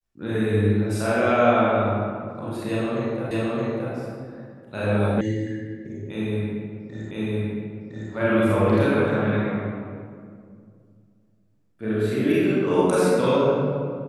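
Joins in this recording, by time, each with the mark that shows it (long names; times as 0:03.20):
0:03.31: the same again, the last 0.62 s
0:05.21: cut off before it has died away
0:07.11: the same again, the last 1.01 s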